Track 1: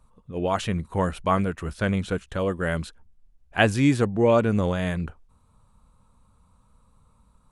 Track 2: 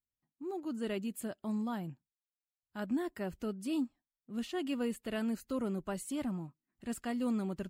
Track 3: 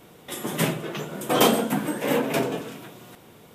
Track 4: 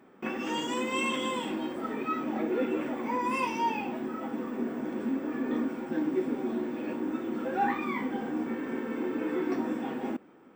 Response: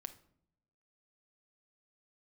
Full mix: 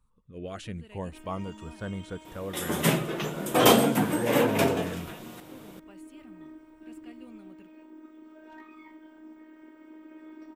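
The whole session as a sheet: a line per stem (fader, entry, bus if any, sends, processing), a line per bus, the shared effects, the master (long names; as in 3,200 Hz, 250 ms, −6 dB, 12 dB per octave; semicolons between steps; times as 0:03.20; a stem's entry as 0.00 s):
−11.0 dB, 0.00 s, no send, auto-filter notch saw up 0.4 Hz 640–3,600 Hz
−17.0 dB, 0.00 s, no send, parametric band 2,500 Hz +12 dB 0.65 octaves
−2.5 dB, 2.25 s, send −4.5 dB, no processing
−15.5 dB, 0.90 s, no send, gain into a clipping stage and back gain 20.5 dB; phases set to zero 313 Hz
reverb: on, RT60 0.70 s, pre-delay 6 ms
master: no processing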